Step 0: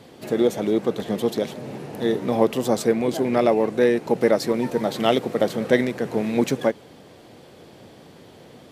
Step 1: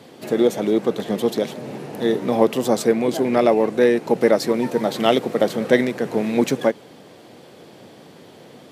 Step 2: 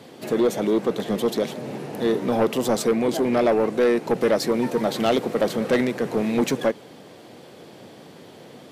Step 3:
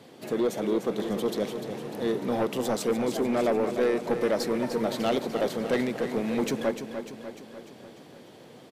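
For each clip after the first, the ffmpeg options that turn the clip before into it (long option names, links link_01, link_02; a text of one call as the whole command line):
ffmpeg -i in.wav -af "highpass=130,volume=2.5dB" out.wav
ffmpeg -i in.wav -af "asoftclip=type=tanh:threshold=-13dB" out.wav
ffmpeg -i in.wav -af "aecho=1:1:298|596|894|1192|1490|1788|2086:0.355|0.206|0.119|0.0692|0.0402|0.0233|0.0135,volume=-6dB" out.wav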